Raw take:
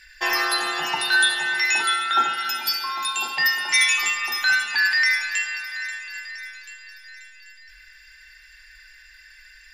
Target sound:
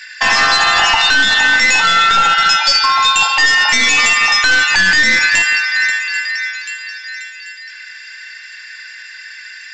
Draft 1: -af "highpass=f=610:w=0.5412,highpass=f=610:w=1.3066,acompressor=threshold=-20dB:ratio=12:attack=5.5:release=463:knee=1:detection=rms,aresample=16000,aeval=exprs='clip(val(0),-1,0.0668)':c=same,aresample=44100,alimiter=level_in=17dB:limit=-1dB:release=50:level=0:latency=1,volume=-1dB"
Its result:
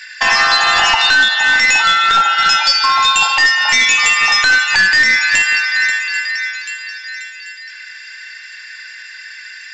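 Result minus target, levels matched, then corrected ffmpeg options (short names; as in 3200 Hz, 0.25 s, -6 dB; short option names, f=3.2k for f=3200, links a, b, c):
compressor: peak gain reduction +9 dB
-af "highpass=f=610:w=0.5412,highpass=f=610:w=1.3066,aresample=16000,aeval=exprs='clip(val(0),-1,0.0668)':c=same,aresample=44100,alimiter=level_in=17dB:limit=-1dB:release=50:level=0:latency=1,volume=-1dB"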